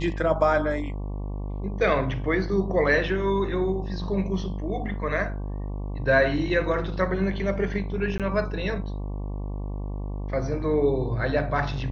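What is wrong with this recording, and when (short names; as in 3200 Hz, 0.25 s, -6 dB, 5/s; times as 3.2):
buzz 50 Hz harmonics 23 -31 dBFS
8.18–8.2 gap 17 ms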